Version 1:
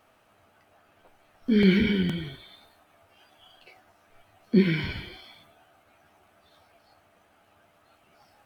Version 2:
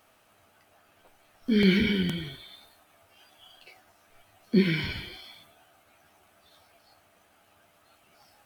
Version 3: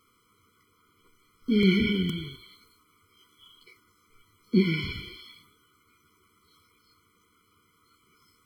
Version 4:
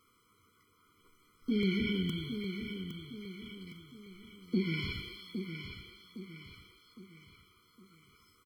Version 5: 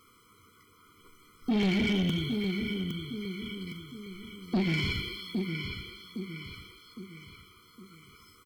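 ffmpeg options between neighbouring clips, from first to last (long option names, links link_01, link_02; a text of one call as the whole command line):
ffmpeg -i in.wav -af "highshelf=frequency=3400:gain=9,volume=-2dB" out.wav
ffmpeg -i in.wav -af "afftfilt=real='re*eq(mod(floor(b*sr/1024/490),2),0)':imag='im*eq(mod(floor(b*sr/1024/490),2),0)':win_size=1024:overlap=0.75" out.wav
ffmpeg -i in.wav -filter_complex "[0:a]acompressor=threshold=-27dB:ratio=2.5,asplit=2[link_01][link_02];[link_02]aecho=0:1:811|1622|2433|3244|4055:0.398|0.175|0.0771|0.0339|0.0149[link_03];[link_01][link_03]amix=inputs=2:normalize=0,volume=-3dB" out.wav
ffmpeg -i in.wav -af "asoftclip=type=tanh:threshold=-31dB,volume=8.5dB" out.wav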